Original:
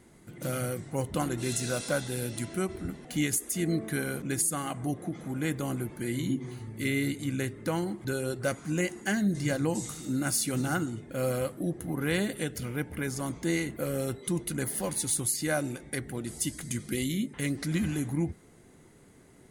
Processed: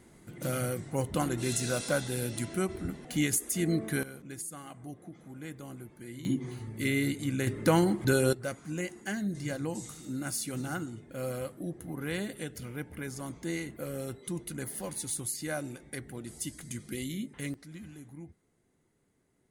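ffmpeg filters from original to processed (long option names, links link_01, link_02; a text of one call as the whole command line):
ffmpeg -i in.wav -af "asetnsamples=nb_out_samples=441:pad=0,asendcmd='4.03 volume volume -12dB;6.25 volume volume 0dB;7.47 volume volume 6.5dB;8.33 volume volume -6dB;17.54 volume volume -17dB',volume=0dB" out.wav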